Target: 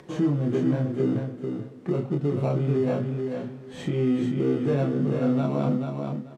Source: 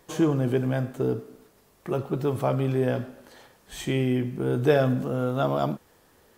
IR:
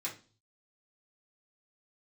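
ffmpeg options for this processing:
-filter_complex "[0:a]flanger=delay=5.3:depth=4.1:regen=-39:speed=0.99:shape=sinusoidal,asplit=2[a][b];[b]acrusher=samples=27:mix=1:aa=0.000001,volume=-9dB[c];[a][c]amix=inputs=2:normalize=0,bass=f=250:g=5,treble=f=4k:g=-7,asplit=2[d][e];[e]adelay=28,volume=-3dB[f];[d][f]amix=inputs=2:normalize=0,acrossover=split=430|1600[g][h][i];[g]acontrast=70[j];[j][h][i]amix=inputs=3:normalize=0,alimiter=limit=-15dB:level=0:latency=1:release=392,aecho=1:1:437|874|1311:0.562|0.112|0.0225,acompressor=mode=upward:threshold=-40dB:ratio=2.5,highpass=160,lowpass=7.7k"

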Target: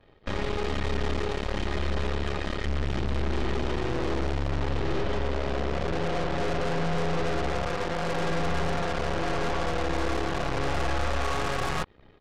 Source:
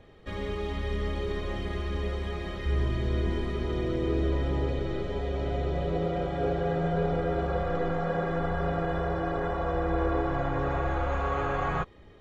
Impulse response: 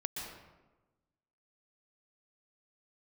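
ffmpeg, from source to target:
-af "aresample=11025,volume=29.5dB,asoftclip=hard,volume=-29.5dB,aresample=44100,aeval=exprs='0.0422*(cos(1*acos(clip(val(0)/0.0422,-1,1)))-cos(1*PI/2))+0.0168*(cos(4*acos(clip(val(0)/0.0422,-1,1)))-cos(4*PI/2))+0.00376*(cos(7*acos(clip(val(0)/0.0422,-1,1)))-cos(7*PI/2))':c=same,volume=2.5dB"

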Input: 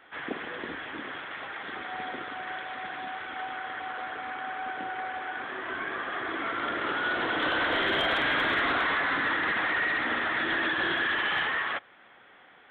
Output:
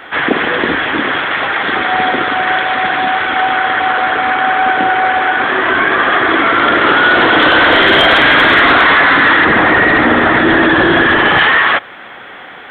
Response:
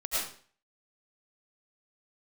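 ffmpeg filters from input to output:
-filter_complex "[0:a]asettb=1/sr,asplit=3[a][b][c];[a]atrim=end=9.454[d];[b]atrim=start=9.45:end=11.39,asetpts=PTS-STARTPTS,afade=t=in:d=0.004:c=qsin,afade=t=out:st=1.936:d=0.004:c=qsin,tiltshelf=f=970:g=7[e];[c]atrim=start=11.386[f];[d][e]acrossfade=d=0.004:c1=hsin:c2=qsin[g];[g][f]acrossfade=d=0.004:c1=qsin:c2=hsin,alimiter=level_in=24dB:limit=-1dB:release=50:level=0:latency=1,volume=-1dB"

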